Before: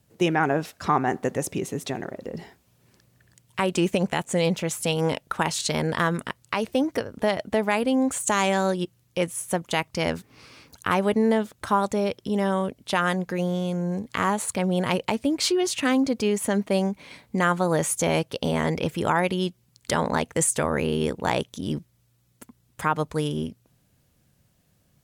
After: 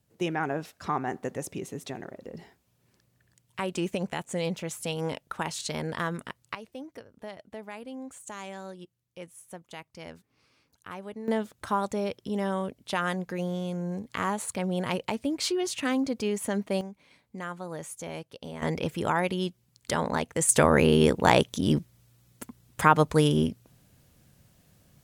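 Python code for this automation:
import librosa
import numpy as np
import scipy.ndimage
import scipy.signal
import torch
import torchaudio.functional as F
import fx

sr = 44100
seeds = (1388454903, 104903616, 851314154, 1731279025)

y = fx.gain(x, sr, db=fx.steps((0.0, -7.5), (6.55, -18.0), (11.28, -5.5), (16.81, -15.0), (18.62, -4.0), (20.49, 4.5)))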